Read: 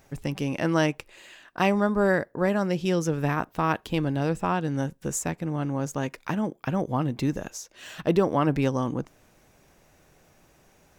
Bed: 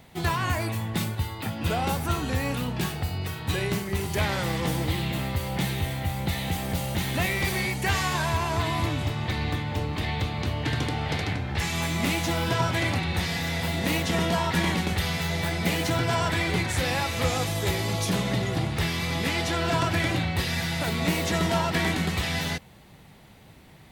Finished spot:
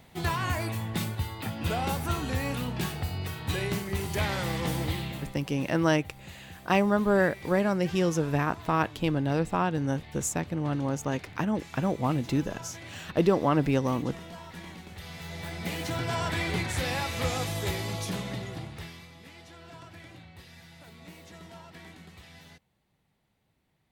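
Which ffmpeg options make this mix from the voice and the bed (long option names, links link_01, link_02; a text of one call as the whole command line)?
ffmpeg -i stem1.wav -i stem2.wav -filter_complex "[0:a]adelay=5100,volume=-1dB[link_01];[1:a]volume=12dB,afade=type=out:start_time=4.86:duration=0.53:silence=0.158489,afade=type=in:start_time=14.9:duration=1.5:silence=0.177828,afade=type=out:start_time=17.58:duration=1.54:silence=0.112202[link_02];[link_01][link_02]amix=inputs=2:normalize=0" out.wav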